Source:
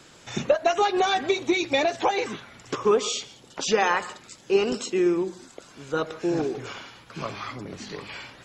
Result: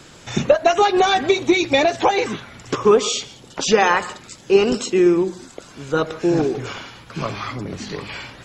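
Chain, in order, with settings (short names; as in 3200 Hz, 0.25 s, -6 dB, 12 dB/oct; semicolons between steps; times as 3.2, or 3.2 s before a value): low shelf 170 Hz +6.5 dB; gain +6 dB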